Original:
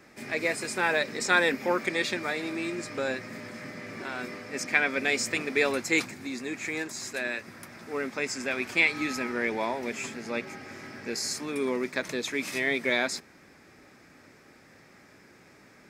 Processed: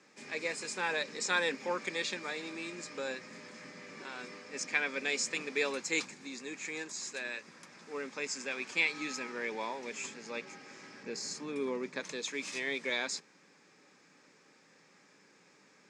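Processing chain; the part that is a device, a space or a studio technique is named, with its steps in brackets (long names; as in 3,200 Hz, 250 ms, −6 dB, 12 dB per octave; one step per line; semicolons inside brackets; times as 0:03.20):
0:11.03–0:12.00: spectral tilt −2 dB per octave
television speaker (loudspeaker in its box 180–8,000 Hz, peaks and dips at 240 Hz −8 dB, 350 Hz −7 dB, 670 Hz −10 dB, 1,400 Hz −5 dB, 2,000 Hz −5 dB, 6,900 Hz +4 dB)
level −4 dB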